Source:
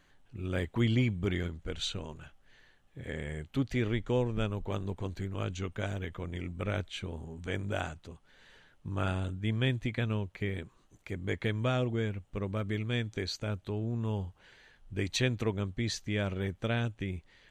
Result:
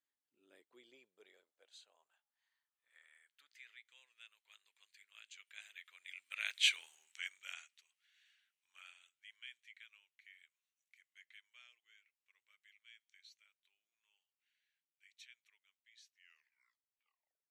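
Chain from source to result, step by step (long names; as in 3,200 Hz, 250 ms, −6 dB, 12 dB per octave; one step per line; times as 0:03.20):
turntable brake at the end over 1.51 s
source passing by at 0:06.71, 15 m/s, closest 1.6 metres
spectral tilt +3 dB per octave
high-pass filter sweep 240 Hz → 2,200 Hz, 0:00.08–0:03.92
bass and treble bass −6 dB, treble +1 dB
level +2.5 dB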